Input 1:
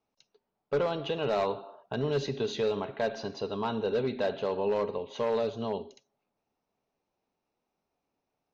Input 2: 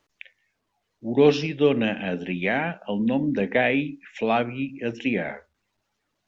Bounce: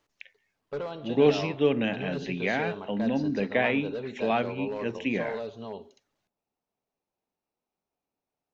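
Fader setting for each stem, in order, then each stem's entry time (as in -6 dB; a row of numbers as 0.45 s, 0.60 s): -6.0 dB, -4.0 dB; 0.00 s, 0.00 s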